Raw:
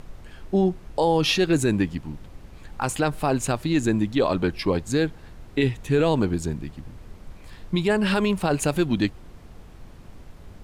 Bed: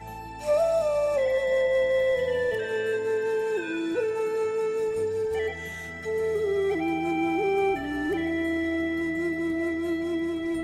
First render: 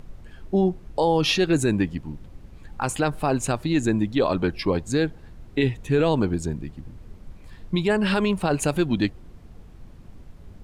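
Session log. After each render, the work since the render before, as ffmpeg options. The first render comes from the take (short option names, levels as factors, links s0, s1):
-af "afftdn=nr=6:nf=-45"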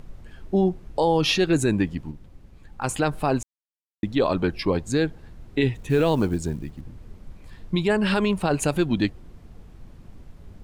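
-filter_complex "[0:a]asettb=1/sr,asplit=3[s0][s1][s2];[s0]atrim=end=5.744[s3];[s1]atrim=start=5.74:end=6.81,asetpts=PTS-STARTPTS,afade=t=in:d=0.004:c=qsin,afade=t=out:st=1.066:d=0.004:c=qsin,acrusher=bits=8:mode=log:mix=0:aa=0.000001[s4];[s2]atrim=start=6.806[s5];[s3][s4]acrossfade=d=0.004:c1=hsin:c2=qsin[s6];[s6][s5]acrossfade=d=0.004:c1=qsin:c2=hsin,asplit=5[s7][s8][s9][s10][s11];[s7]atrim=end=2.112[s12];[s8]atrim=start=2.108:end=2.842,asetpts=PTS-STARTPTS,volume=0.596[s13];[s9]atrim=start=2.838:end=3.43,asetpts=PTS-STARTPTS,afade=t=out:st=0.588:d=0.004:c=hsin[s14];[s10]atrim=start=3.43:end=4.03,asetpts=PTS-STARTPTS,volume=0[s15];[s11]atrim=start=4.03,asetpts=PTS-STARTPTS,afade=t=in:d=0.004:c=hsin[s16];[s12][s13]acrossfade=d=0.004:c1=hsin:c2=hsin[s17];[s14][s15][s16]concat=n=3:v=0:a=1[s18];[s17][s18]acrossfade=d=0.004:c1=hsin:c2=hsin"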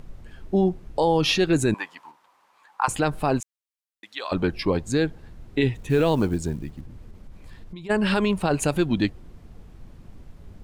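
-filter_complex "[0:a]asettb=1/sr,asplit=3[s0][s1][s2];[s0]atrim=end=1.744[s3];[s1]atrim=start=1.74:end=2.88,asetpts=PTS-STARTPTS,afade=t=in:d=0.004:c=qsin,afade=t=out:st=1.136:d=0.004:c=qsin,highpass=f=980:t=q:w=4.4[s4];[s2]atrim=start=2.876[s5];[s3][s4]acrossfade=d=0.004:c1=hsin:c2=qsin[s6];[s6][s5]acrossfade=d=0.004:c1=qsin:c2=hsin,asettb=1/sr,asplit=3[s7][s8][s9];[s7]atrim=end=3.404[s10];[s8]atrim=start=3.4:end=4.32,asetpts=PTS-STARTPTS,afade=t=in:d=0.004:c=qsin,afade=t=out:st=0.916:d=0.004:c=qsin,highpass=1300[s11];[s9]atrim=start=4.316[s12];[s10][s11]acrossfade=d=0.004:c1=hsin:c2=qsin[s13];[s13][s12]acrossfade=d=0.004:c1=qsin:c2=hsin,asplit=3[s14][s15][s16];[s14]afade=t=out:st=6.85:d=0.02[s17];[s15]acompressor=threshold=0.0158:ratio=6:attack=3.2:release=140:knee=1:detection=peak,afade=t=in:st=6.85:d=0.02,afade=t=out:st=7.89:d=0.02[s18];[s16]afade=t=in:st=7.89:d=0.02[s19];[s17][s18][s19]amix=inputs=3:normalize=0"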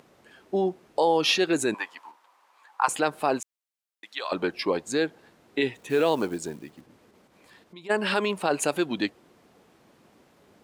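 -af "highpass=350"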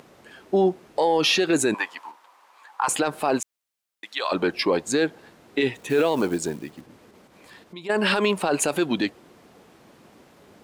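-af "acontrast=62,alimiter=limit=0.251:level=0:latency=1:release=28"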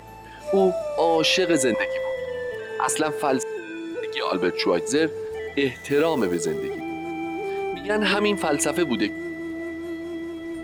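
-filter_complex "[1:a]volume=0.631[s0];[0:a][s0]amix=inputs=2:normalize=0"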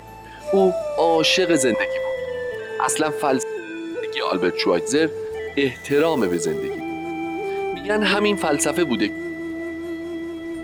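-af "volume=1.33"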